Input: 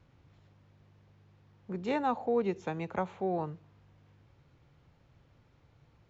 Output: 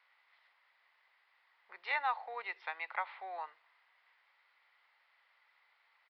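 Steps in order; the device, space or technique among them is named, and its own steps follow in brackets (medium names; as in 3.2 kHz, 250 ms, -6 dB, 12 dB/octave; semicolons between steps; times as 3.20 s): musical greeting card (resampled via 11.025 kHz; high-pass 890 Hz 24 dB/octave; peaking EQ 2 kHz +11.5 dB 0.25 oct); trim +1 dB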